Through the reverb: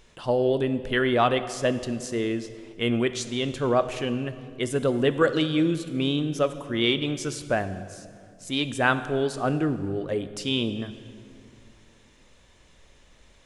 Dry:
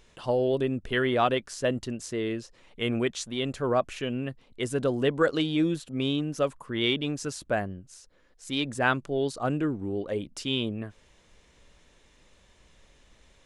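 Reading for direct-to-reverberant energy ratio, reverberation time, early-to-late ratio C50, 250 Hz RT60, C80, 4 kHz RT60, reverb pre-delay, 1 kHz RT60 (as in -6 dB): 11.0 dB, 2.2 s, 12.5 dB, 2.8 s, 13.5 dB, 1.6 s, 8 ms, 2.1 s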